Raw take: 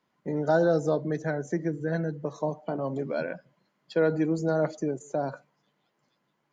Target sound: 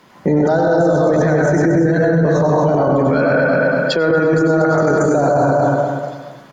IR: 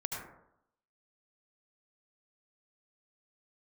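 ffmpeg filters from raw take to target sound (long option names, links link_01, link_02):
-filter_complex "[0:a]asettb=1/sr,asplit=3[link_01][link_02][link_03];[link_01]atrim=end=2.974[link_04];[link_02]atrim=start=2.97:end=5.19,asetpts=PTS-STARTPTS,afade=type=in:duration=0.004:curve=qsin,afade=type=out:start_time=2.216:duration=0.004:curve=qsin,equalizer=frequency=1300:width_type=o:width=0.35:gain=10.5[link_05];[link_03]atrim=start=5.186[link_06];[link_04][link_05]acrossfade=duration=0.004:curve1=hsin:curve2=qsin[link_07];[link_07][link_06]acrossfade=duration=0.004:curve1=qsin:curve2=hsin,aecho=1:1:232|464|696|928:0.447|0.138|0.0429|0.0133[link_08];[1:a]atrim=start_sample=2205,afade=type=out:start_time=0.27:duration=0.01,atrim=end_sample=12348,asetrate=35280,aresample=44100[link_09];[link_08][link_09]afir=irnorm=-1:irlink=0,alimiter=level_in=33.5dB:limit=-1dB:release=50:level=0:latency=1,volume=-6dB"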